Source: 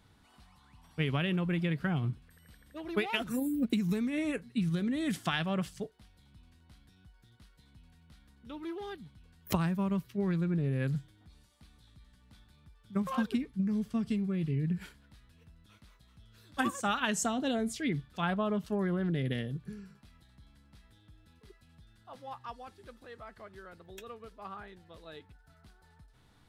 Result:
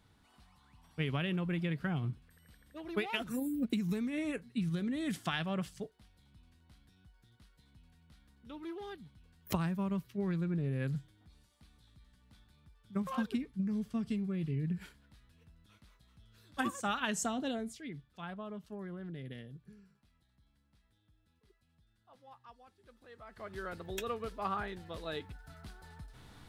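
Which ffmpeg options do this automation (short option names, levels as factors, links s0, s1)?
-af "volume=7.5,afade=t=out:st=17.4:d=0.42:silence=0.354813,afade=t=in:st=22.79:d=0.5:silence=0.375837,afade=t=in:st=23.29:d=0.36:silence=0.237137"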